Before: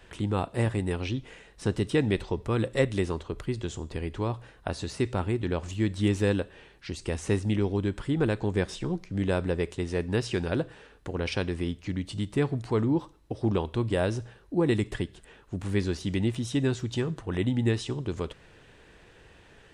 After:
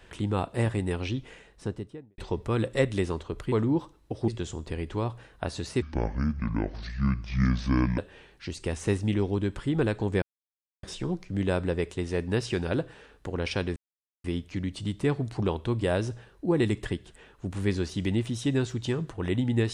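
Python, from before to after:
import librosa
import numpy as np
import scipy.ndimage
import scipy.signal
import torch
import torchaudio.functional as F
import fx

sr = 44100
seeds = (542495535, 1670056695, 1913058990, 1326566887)

y = fx.studio_fade_out(x, sr, start_s=1.26, length_s=0.92)
y = fx.edit(y, sr, fx.speed_span(start_s=5.06, length_s=1.34, speed=0.62),
    fx.insert_silence(at_s=8.64, length_s=0.61),
    fx.insert_silence(at_s=11.57, length_s=0.48),
    fx.move(start_s=12.72, length_s=0.76, to_s=3.52), tone=tone)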